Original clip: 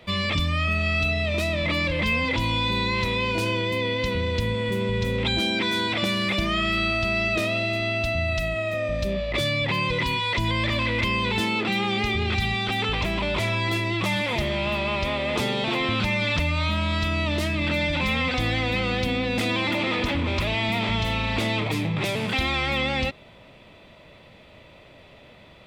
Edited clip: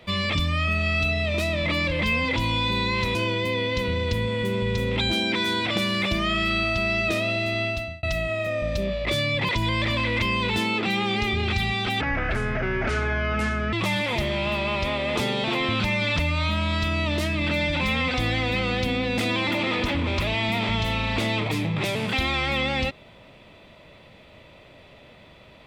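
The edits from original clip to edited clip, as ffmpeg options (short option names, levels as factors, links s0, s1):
-filter_complex "[0:a]asplit=6[s0][s1][s2][s3][s4][s5];[s0]atrim=end=3.152[s6];[s1]atrim=start=3.418:end=8.3,asetpts=PTS-STARTPTS,afade=t=out:st=4.502:d=0.38[s7];[s2]atrim=start=8.3:end=9.762,asetpts=PTS-STARTPTS,afade=t=in:d=0.004:c=hsin[s8];[s3]atrim=start=10.308:end=12.834[s9];[s4]atrim=start=12.83:end=13.93,asetpts=PTS-STARTPTS,asetrate=28224,aresample=44100[s10];[s5]atrim=start=13.926[s11];[s7][s8]concat=n=2:v=0:a=1[s12];[s6][s12]acrossfade=d=0.004:c1=hsin:c2=hsin[s13];[s13][s9]acrossfade=d=0.004:c1=hsin:c2=hsin[s14];[s14][s10]acrossfade=d=0.004:c1=hsin:c2=hsin[s15];[s15][s11]acrossfade=d=0.004:c1=hsin:c2=hsin"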